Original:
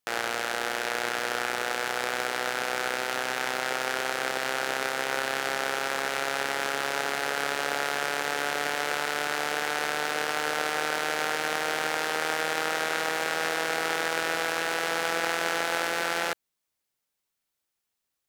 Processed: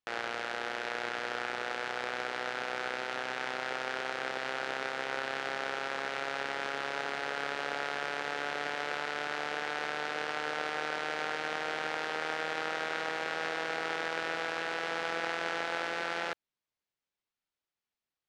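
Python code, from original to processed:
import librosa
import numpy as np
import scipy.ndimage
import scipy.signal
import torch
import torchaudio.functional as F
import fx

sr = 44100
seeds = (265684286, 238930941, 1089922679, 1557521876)

y = scipy.signal.sosfilt(scipy.signal.butter(2, 4400.0, 'lowpass', fs=sr, output='sos'), x)
y = y * 10.0 ** (-6.0 / 20.0)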